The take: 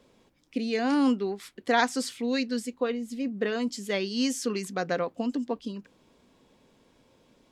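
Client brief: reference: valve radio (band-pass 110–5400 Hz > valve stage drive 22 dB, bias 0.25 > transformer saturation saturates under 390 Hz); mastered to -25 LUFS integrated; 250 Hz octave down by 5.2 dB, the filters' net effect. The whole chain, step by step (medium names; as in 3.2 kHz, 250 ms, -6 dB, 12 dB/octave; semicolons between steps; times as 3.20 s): band-pass 110–5400 Hz; peaking EQ 250 Hz -5.5 dB; valve stage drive 22 dB, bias 0.25; transformer saturation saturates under 390 Hz; trim +10.5 dB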